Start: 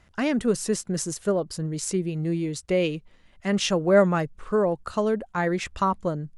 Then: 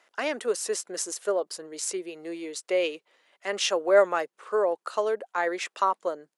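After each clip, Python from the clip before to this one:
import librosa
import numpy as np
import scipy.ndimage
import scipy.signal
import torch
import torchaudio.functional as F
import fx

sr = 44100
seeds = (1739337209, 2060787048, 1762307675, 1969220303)

y = scipy.signal.sosfilt(scipy.signal.butter(4, 410.0, 'highpass', fs=sr, output='sos'), x)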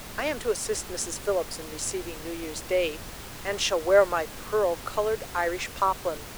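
y = fx.dmg_noise_colour(x, sr, seeds[0], colour='pink', level_db=-40.0)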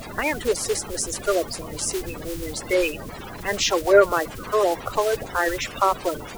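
y = fx.spec_quant(x, sr, step_db=30)
y = y * librosa.db_to_amplitude(5.0)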